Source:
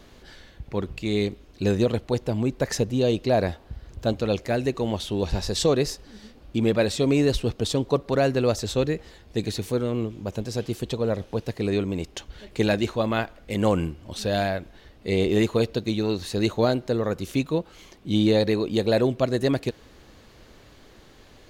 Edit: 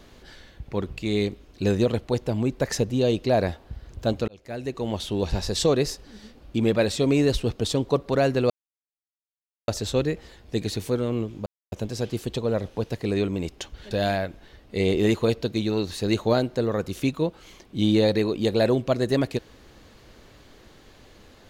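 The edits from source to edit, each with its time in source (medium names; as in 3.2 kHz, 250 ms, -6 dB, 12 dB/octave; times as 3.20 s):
4.28–5.04 s: fade in
8.50 s: insert silence 1.18 s
10.28 s: insert silence 0.26 s
12.47–14.23 s: delete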